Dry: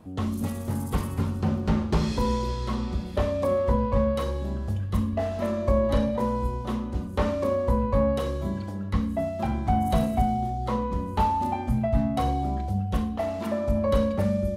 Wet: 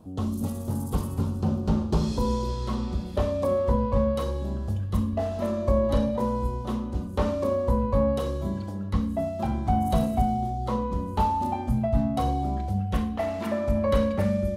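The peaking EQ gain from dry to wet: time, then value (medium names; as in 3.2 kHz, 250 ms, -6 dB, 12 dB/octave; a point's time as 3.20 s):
peaking EQ 2 kHz 0.97 oct
2.22 s -13 dB
2.69 s -5.5 dB
12.39 s -5.5 dB
12.84 s +3.5 dB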